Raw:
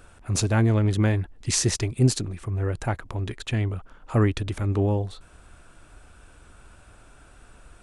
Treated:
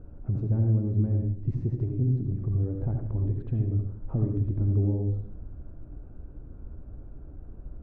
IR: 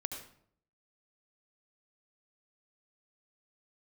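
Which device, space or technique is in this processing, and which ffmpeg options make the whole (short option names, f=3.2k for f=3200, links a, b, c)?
television next door: -filter_complex "[0:a]acompressor=threshold=-33dB:ratio=5,lowpass=320[a];[1:a]atrim=start_sample=2205[b];[a][b]afir=irnorm=-1:irlink=0,volume=8.5dB"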